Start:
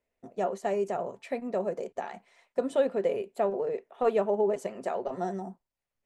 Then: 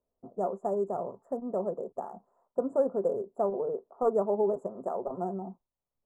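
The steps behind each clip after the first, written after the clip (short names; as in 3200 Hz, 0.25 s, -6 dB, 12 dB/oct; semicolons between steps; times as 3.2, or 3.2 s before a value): Wiener smoothing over 15 samples; elliptic band-stop 1200–7400 Hz, stop band 50 dB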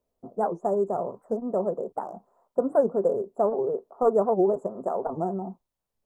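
record warp 78 rpm, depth 250 cents; gain +5 dB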